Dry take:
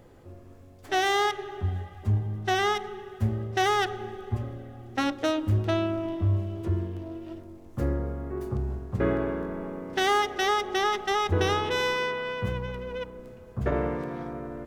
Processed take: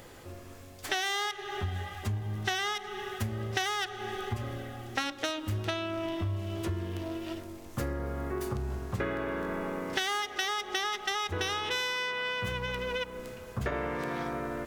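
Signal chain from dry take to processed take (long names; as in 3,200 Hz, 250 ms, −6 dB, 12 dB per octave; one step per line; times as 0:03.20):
tilt shelving filter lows −7.5 dB, about 1,100 Hz
downward compressor 6 to 1, threshold −37 dBFS, peak gain reduction 16.5 dB
level +7.5 dB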